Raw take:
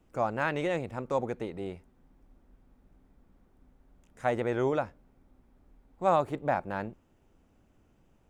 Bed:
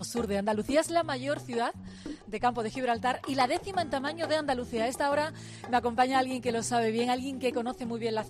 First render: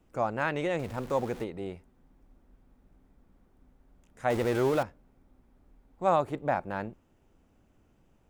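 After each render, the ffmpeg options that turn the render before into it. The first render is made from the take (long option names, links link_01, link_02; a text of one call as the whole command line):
ffmpeg -i in.wav -filter_complex "[0:a]asettb=1/sr,asplit=3[link_01][link_02][link_03];[link_01]atrim=end=0.794[link_04];[link_02]atrim=start=0.79:end=1.44,asetpts=PTS-STARTPTS,afade=type=in:duration=0.004:curve=qsin,afade=type=out:start_time=0.646:duration=0.004:curve=qsin,aeval=exprs='val(0)+0.5*0.00944*sgn(val(0))':channel_layout=same[link_05];[link_03]atrim=start=1.436[link_06];[link_04][link_05]acrossfade=duration=0.004:curve1=hsin:curve2=qsin[link_07];[link_07][link_06]acrossfade=duration=0.004:curve1=qsin:curve2=hsin,asettb=1/sr,asplit=3[link_08][link_09][link_10];[link_08]atrim=end=4.304[link_11];[link_09]atrim=start=4.3:end=4.83,asetpts=PTS-STARTPTS,afade=type=in:duration=0.004:curve=qsin,afade=type=out:start_time=0.526:duration=0.004:curve=qsin,aeval=exprs='val(0)+0.5*0.0251*sgn(val(0))':channel_layout=same[link_12];[link_10]atrim=start=4.826[link_13];[link_11][link_12]acrossfade=duration=0.004:curve1=hsin:curve2=qsin[link_14];[link_14][link_13]acrossfade=duration=0.004:curve1=qsin:curve2=hsin" out.wav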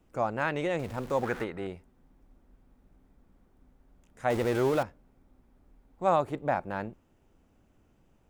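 ffmpeg -i in.wav -filter_complex "[0:a]asettb=1/sr,asplit=3[link_01][link_02][link_03];[link_01]atrim=end=1.234[link_04];[link_02]atrim=start=1.23:end=1.67,asetpts=PTS-STARTPTS,afade=type=in:duration=0.004:curve=qsin,afade=type=out:start_time=0.436:duration=0.004:curve=qsin,equalizer=frequency=1500:width_type=o:width=1.1:gain=13.5[link_05];[link_03]atrim=start=1.666[link_06];[link_04][link_05]acrossfade=duration=0.004:curve1=hsin:curve2=qsin[link_07];[link_07][link_06]acrossfade=duration=0.004:curve1=qsin:curve2=hsin" out.wav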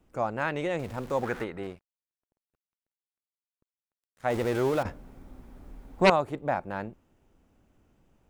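ffmpeg -i in.wav -filter_complex "[0:a]asettb=1/sr,asplit=3[link_01][link_02][link_03];[link_01]atrim=end=1.634[link_04];[link_02]atrim=start=1.63:end=4.34,asetpts=PTS-STARTPTS,afade=type=in:duration=0.004:curve=qsin,afade=type=out:start_time=2.706:duration=0.004:curve=qsin,aeval=exprs='sgn(val(0))*max(abs(val(0))-0.00282,0)':channel_layout=same[link_05];[link_03]atrim=start=4.336[link_06];[link_04][link_05]acrossfade=duration=0.004:curve1=hsin:curve2=qsin[link_07];[link_07][link_06]acrossfade=duration=0.004:curve1=qsin:curve2=hsin,asettb=1/sr,asplit=3[link_08][link_09][link_10];[link_08]atrim=end=4.854[link_11];[link_09]atrim=start=4.85:end=6.1,asetpts=PTS-STARTPTS,afade=type=in:duration=0.004:curve=qsin,afade=type=out:start_time=1.246:duration=0.004:curve=qsin,aeval=exprs='0.237*sin(PI/2*3.16*val(0)/0.237)':channel_layout=same[link_12];[link_10]atrim=start=6.096[link_13];[link_11][link_12]acrossfade=duration=0.004:curve1=hsin:curve2=qsin[link_14];[link_14][link_13]acrossfade=duration=0.004:curve1=qsin:curve2=hsin" out.wav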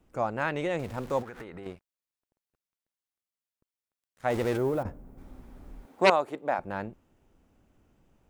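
ffmpeg -i in.wav -filter_complex "[0:a]asettb=1/sr,asplit=3[link_01][link_02][link_03];[link_01]atrim=end=1.224[link_04];[link_02]atrim=start=1.22:end=1.66,asetpts=PTS-STARTPTS,afade=type=in:duration=0.004:curve=qsin,afade=type=out:start_time=0.436:duration=0.004:curve=qsin,acompressor=threshold=-38dB:ratio=10:attack=3.2:release=140:knee=1:detection=peak[link_05];[link_03]atrim=start=1.656[link_06];[link_04][link_05]acrossfade=duration=0.004:curve1=hsin:curve2=qsin[link_07];[link_07][link_06]acrossfade=duration=0.004:curve1=qsin:curve2=hsin,asplit=3[link_08][link_09][link_10];[link_08]afade=type=out:start_time=4.56:duration=0.02[link_11];[link_09]equalizer=frequency=3700:width=0.37:gain=-14,afade=type=in:start_time=4.56:duration=0.02,afade=type=out:start_time=5.17:duration=0.02[link_12];[link_10]afade=type=in:start_time=5.17:duration=0.02[link_13];[link_11][link_12][link_13]amix=inputs=3:normalize=0,asettb=1/sr,asplit=3[link_14][link_15][link_16];[link_14]atrim=end=5.854[link_17];[link_15]atrim=start=5.85:end=6.59,asetpts=PTS-STARTPTS,afade=type=in:duration=0.004:curve=qsin,afade=type=out:start_time=0.736:duration=0.004:curve=qsin,highpass=290[link_18];[link_16]atrim=start=6.586[link_19];[link_17][link_18]acrossfade=duration=0.004:curve1=hsin:curve2=qsin[link_20];[link_20][link_19]acrossfade=duration=0.004:curve1=qsin:curve2=hsin" out.wav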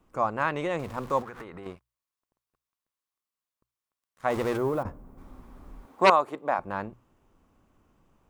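ffmpeg -i in.wav -af "equalizer=frequency=1100:width=3.4:gain=9.5,bandreject=frequency=60:width_type=h:width=6,bandreject=frequency=120:width_type=h:width=6" out.wav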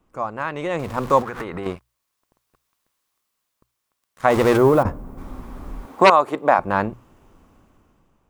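ffmpeg -i in.wav -af "alimiter=limit=-14.5dB:level=0:latency=1:release=349,dynaudnorm=framelen=270:gausssize=7:maxgain=16.5dB" out.wav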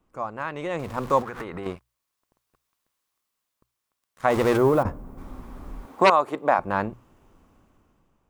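ffmpeg -i in.wav -af "volume=-4.5dB" out.wav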